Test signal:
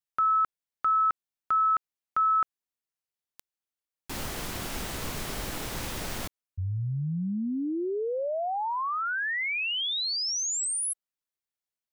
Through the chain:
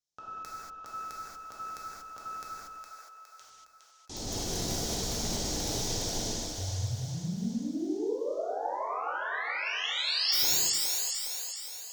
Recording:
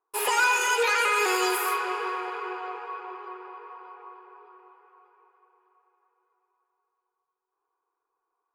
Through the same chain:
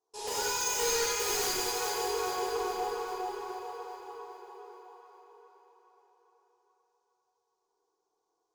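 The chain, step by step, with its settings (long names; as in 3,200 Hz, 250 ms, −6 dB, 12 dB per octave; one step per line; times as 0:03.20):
reverb reduction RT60 1.2 s
flat-topped bell 1,700 Hz −12.5 dB
mains-hum notches 50/100/150/200 Hz
in parallel at +2 dB: compressor whose output falls as the input rises −40 dBFS, ratio −0.5
on the sum: tube saturation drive 15 dB, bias 0.8
transistor ladder low-pass 7,000 Hz, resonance 55%
wrap-around overflow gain 33 dB
on a send: echo with a time of its own for lows and highs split 460 Hz, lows 96 ms, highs 412 ms, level −4.5 dB
on the sum: reverb whose tail is shaped and stops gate 260 ms flat, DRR −7.5 dB
level +2.5 dB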